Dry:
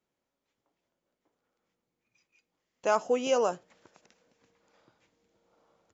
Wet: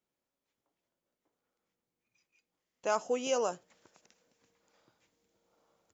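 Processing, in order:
high-shelf EQ 5,800 Hz +4 dB, from 0:02.90 +10.5 dB
level −5 dB

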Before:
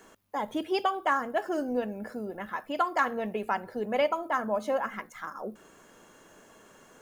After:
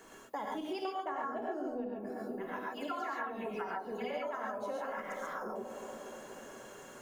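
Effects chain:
0:00.95–0:01.96: tilt shelving filter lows +6.5 dB, about 1,400 Hz
0:02.60–0:04.28: all-pass dispersion lows, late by 124 ms, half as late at 2,500 Hz
on a send: delay with a band-pass on its return 238 ms, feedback 72%, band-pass 410 Hz, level −12 dB
on the sum: reverb whose tail is shaped and stops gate 160 ms rising, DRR −3 dB
downward compressor 5 to 1, threshold −36 dBFS, peak gain reduction 19.5 dB
mains-hum notches 50/100/150/200/250 Hz
level −1 dB

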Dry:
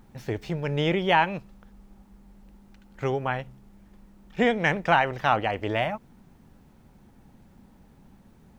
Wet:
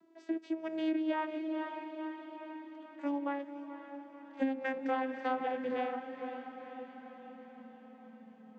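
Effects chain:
vocoder with a gliding carrier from E4, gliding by −7 semitones
on a send: feedback delay with all-pass diffusion 503 ms, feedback 59%, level −11 dB
on the sum: downward compressor 6 to 1, threshold −25 dBFS, peak gain reduction 10.5 dB
level −4.5 dB

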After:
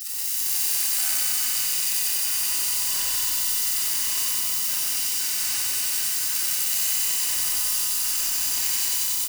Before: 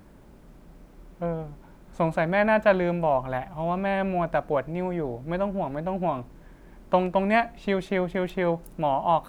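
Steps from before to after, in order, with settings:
sign of each sample alone
gate on every frequency bin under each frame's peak −30 dB weak
high-shelf EQ 3,400 Hz +9.5 dB
notch filter 4,400 Hz, Q 6.4
comb filter 1.1 ms, depth 52%
hollow resonant body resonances 380/1,900 Hz, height 8 dB
formants moved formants −4 semitones
on a send: repeating echo 188 ms, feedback 59%, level −7 dB
on the sum: four-comb reverb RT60 1.6 s, combs from 31 ms, DRR −2.5 dB
feedback echo at a low word length 92 ms, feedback 80%, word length 7 bits, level −3.5 dB

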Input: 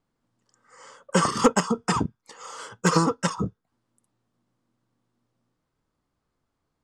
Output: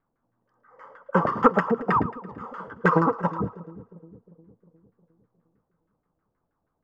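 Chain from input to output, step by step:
auto-filter low-pass saw down 6.3 Hz 530–1,800 Hz
echo with a time of its own for lows and highs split 470 Hz, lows 356 ms, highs 111 ms, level −15 dB
level −1.5 dB

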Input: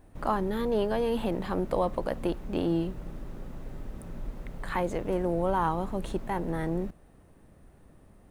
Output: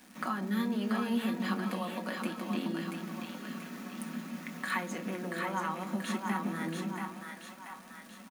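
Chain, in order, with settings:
high-shelf EQ 7,700 Hz +6 dB
downward compressor, threshold −34 dBFS, peak gain reduction 11.5 dB
Butterworth high-pass 180 Hz 72 dB per octave
flat-topped bell 550 Hz −8.5 dB
comb filter 5.4 ms, depth 52%
echo with a time of its own for lows and highs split 610 Hz, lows 154 ms, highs 683 ms, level −4 dB
convolution reverb, pre-delay 3 ms, DRR 7.5 dB
surface crackle 560 per second −50 dBFS
level +4 dB

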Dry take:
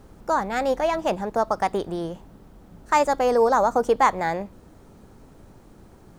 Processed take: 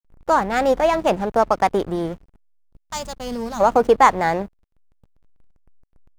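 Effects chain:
gain on a spectral selection 0:02.37–0:03.61, 250–2,800 Hz −17 dB
slack as between gear wheels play −33 dBFS
level +5.5 dB

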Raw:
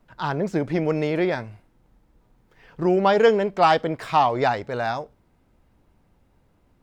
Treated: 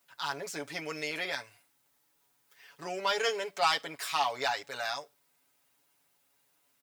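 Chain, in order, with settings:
high-pass filter 46 Hz
first difference
comb filter 7.1 ms, depth 77%
in parallel at −3.5 dB: soft clipping −31.5 dBFS, distortion −9 dB
on the sum: level +2 dB

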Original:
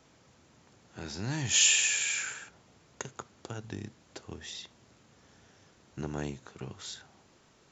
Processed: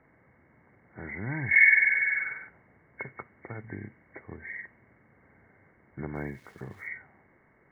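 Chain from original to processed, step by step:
hearing-aid frequency compression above 1,500 Hz 4 to 1
low-pass that shuts in the quiet parts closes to 1,500 Hz, open at −25 dBFS
0:06.15–0:06.88: centre clipping without the shift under −56.5 dBFS

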